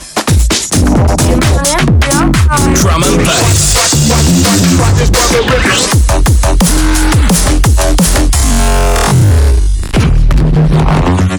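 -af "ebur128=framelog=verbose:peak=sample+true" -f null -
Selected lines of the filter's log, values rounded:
Integrated loudness:
  I:          -8.8 LUFS
  Threshold: -18.8 LUFS
Loudness range:
  LRA:         1.6 LU
  Threshold: -28.7 LUFS
  LRA low:    -9.5 LUFS
  LRA high:   -7.9 LUFS
Sample peak:
  Peak:       -2.4 dBFS
True peak:
  Peak:       -0.7 dBFS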